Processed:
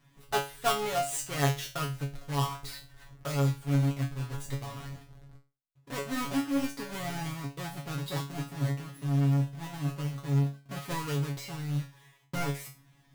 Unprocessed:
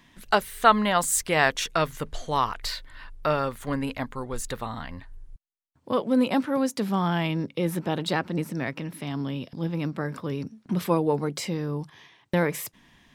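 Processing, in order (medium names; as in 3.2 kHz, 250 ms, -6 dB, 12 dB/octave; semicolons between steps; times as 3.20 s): square wave that keeps the level; peaking EQ 130 Hz +14.5 dB 0.21 oct; feedback comb 140 Hz, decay 0.31 s, harmonics all, mix 100%; trim -1.5 dB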